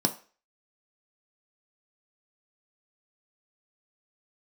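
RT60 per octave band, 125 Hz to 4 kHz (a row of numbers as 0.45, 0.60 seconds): 0.25, 0.30, 0.40, 0.40, 0.40, 0.40 seconds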